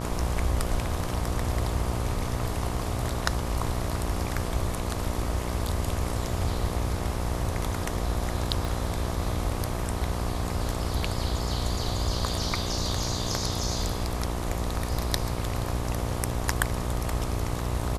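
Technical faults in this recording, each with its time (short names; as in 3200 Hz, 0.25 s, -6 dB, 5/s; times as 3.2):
buzz 60 Hz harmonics 21 -32 dBFS
8.65 pop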